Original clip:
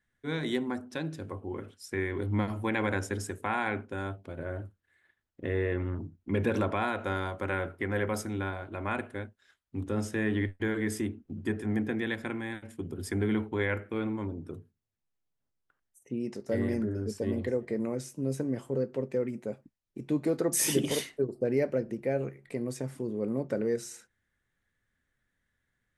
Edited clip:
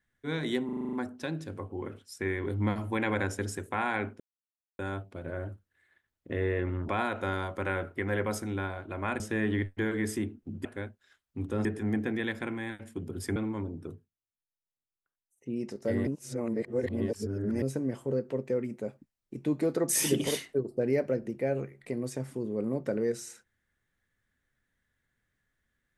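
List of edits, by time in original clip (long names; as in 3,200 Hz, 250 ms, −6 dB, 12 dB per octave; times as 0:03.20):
0:00.65: stutter 0.04 s, 8 plays
0:03.92: splice in silence 0.59 s
0:06.02–0:06.72: remove
0:09.03–0:10.03: move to 0:11.48
0:13.19–0:14.00: remove
0:14.55–0:16.18: duck −15 dB, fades 0.20 s
0:16.71–0:18.26: reverse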